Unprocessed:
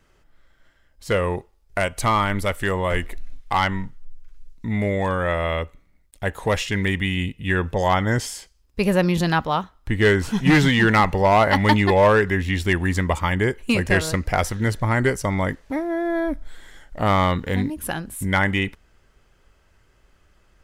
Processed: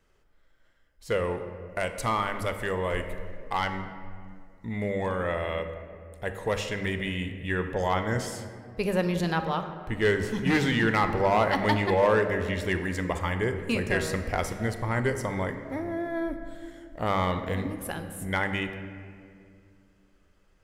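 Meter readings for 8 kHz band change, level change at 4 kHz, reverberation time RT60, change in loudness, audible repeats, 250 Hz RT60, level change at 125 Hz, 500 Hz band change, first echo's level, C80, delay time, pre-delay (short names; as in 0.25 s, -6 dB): -8.0 dB, -7.5 dB, 2.2 s, -7.0 dB, none, 3.0 s, -8.5 dB, -5.5 dB, none, 9.5 dB, none, 26 ms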